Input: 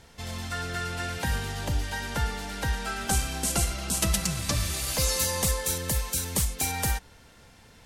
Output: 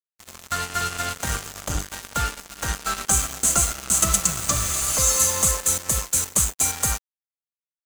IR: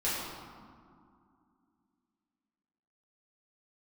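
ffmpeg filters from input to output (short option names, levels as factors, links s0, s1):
-af "superequalizer=8b=1.41:10b=3.16:15b=3.98:16b=2,acrusher=bits=3:mix=0:aa=0.5"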